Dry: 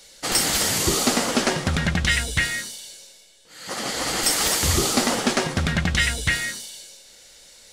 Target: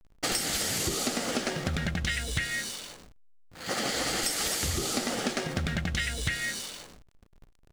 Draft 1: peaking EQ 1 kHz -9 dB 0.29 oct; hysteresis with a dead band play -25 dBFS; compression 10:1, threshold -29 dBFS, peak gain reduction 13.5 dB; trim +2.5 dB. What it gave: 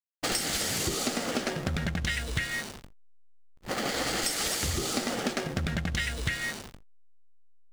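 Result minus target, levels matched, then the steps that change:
hysteresis with a dead band: distortion +7 dB
change: hysteresis with a dead band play -33 dBFS

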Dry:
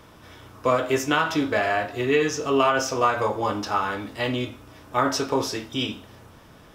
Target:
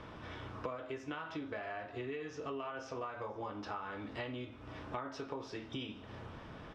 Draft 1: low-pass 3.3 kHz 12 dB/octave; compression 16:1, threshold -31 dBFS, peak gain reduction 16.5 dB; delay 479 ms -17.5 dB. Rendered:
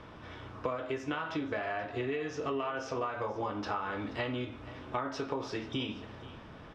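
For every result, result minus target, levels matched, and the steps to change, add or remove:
compression: peak gain reduction -7 dB; echo-to-direct +8.5 dB
change: compression 16:1, threshold -38.5 dBFS, peak gain reduction 23.5 dB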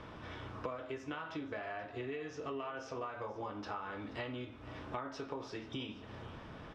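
echo-to-direct +8.5 dB
change: delay 479 ms -26 dB

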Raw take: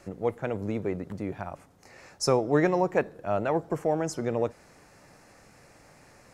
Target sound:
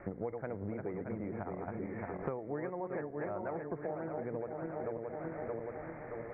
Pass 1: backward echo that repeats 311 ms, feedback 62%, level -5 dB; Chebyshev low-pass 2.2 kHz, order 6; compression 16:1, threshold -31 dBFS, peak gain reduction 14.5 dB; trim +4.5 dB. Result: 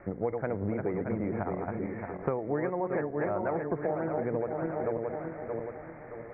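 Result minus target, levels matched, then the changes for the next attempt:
compression: peak gain reduction -8 dB
change: compression 16:1, threshold -39.5 dBFS, peak gain reduction 22.5 dB

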